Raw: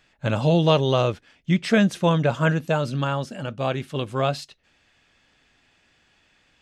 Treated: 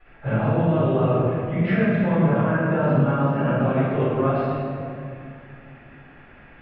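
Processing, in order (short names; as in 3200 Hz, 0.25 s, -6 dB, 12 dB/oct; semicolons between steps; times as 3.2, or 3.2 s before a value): LPF 2100 Hz 24 dB/oct; notches 60/120/180 Hz; limiter -18 dBFS, peak gain reduction 12 dB; compressor 5:1, threshold -35 dBFS, peak gain reduction 12.5 dB; reverb RT60 2.5 s, pre-delay 4 ms, DRR -16 dB; ending taper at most 240 dB/s; gain -5 dB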